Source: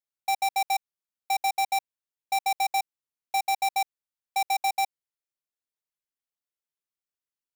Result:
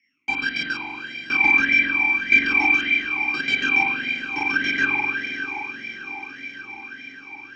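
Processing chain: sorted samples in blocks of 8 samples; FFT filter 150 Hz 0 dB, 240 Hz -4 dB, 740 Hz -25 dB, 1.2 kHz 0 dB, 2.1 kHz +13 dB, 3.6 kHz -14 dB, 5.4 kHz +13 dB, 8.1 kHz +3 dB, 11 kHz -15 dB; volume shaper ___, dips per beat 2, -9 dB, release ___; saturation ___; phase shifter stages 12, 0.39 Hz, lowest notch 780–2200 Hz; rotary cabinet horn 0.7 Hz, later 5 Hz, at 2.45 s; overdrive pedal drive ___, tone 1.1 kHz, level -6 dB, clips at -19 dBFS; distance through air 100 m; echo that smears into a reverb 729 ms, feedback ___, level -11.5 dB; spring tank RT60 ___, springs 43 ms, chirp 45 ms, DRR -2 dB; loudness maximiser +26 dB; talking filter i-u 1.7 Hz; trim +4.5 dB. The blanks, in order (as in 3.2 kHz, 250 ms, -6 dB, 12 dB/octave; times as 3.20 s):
123 bpm, 132 ms, -19 dBFS, 33 dB, 67%, 2.9 s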